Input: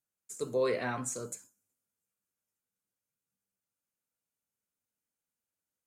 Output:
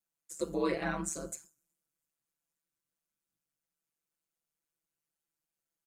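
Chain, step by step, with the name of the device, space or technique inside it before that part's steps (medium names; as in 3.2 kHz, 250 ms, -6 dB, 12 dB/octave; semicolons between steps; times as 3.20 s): ring-modulated robot voice (ring modulator 75 Hz; comb 6 ms, depth 84%)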